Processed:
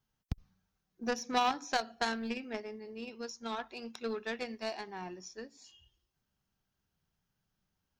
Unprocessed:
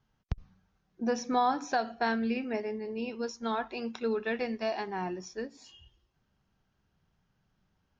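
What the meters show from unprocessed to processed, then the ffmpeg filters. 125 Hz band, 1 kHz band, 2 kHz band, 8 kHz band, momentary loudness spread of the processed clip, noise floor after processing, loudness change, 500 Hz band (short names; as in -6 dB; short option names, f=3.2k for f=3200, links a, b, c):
-4.5 dB, -4.0 dB, -2.5 dB, n/a, 14 LU, -84 dBFS, -4.5 dB, -6.5 dB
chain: -af "aeval=exprs='0.141*(cos(1*acos(clip(val(0)/0.141,-1,1)))-cos(1*PI/2))+0.0316*(cos(3*acos(clip(val(0)/0.141,-1,1)))-cos(3*PI/2))':c=same,crystalizer=i=2.5:c=0"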